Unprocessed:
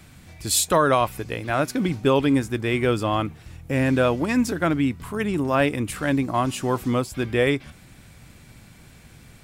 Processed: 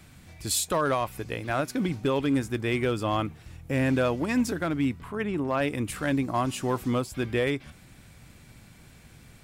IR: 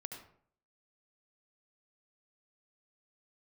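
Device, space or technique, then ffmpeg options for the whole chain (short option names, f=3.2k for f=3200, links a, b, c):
limiter into clipper: -filter_complex "[0:a]asplit=3[a][b][c];[a]afade=t=out:st=4.99:d=0.02[d];[b]bass=f=250:g=-3,treble=f=4k:g=-11,afade=t=in:st=4.99:d=0.02,afade=t=out:st=5.6:d=0.02[e];[c]afade=t=in:st=5.6:d=0.02[f];[d][e][f]amix=inputs=3:normalize=0,alimiter=limit=-12dB:level=0:latency=1:release=197,asoftclip=type=hard:threshold=-14.5dB,volume=-3.5dB"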